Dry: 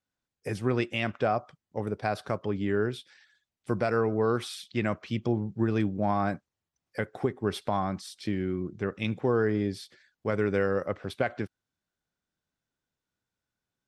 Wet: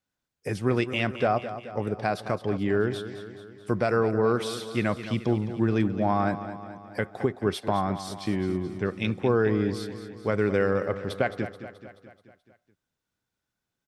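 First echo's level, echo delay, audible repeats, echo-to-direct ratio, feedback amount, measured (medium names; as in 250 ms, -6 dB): -12.0 dB, 215 ms, 5, -10.5 dB, 57%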